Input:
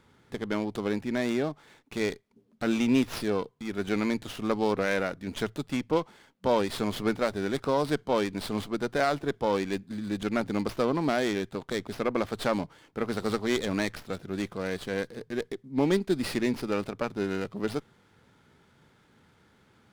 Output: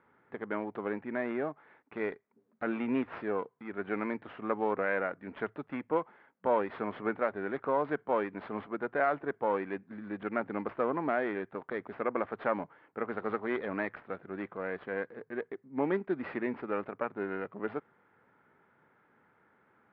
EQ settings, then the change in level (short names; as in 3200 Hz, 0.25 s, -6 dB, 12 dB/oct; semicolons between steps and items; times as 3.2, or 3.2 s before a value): HPF 570 Hz 6 dB/oct; inverse Chebyshev low-pass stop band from 9700 Hz, stop band 80 dB; 0.0 dB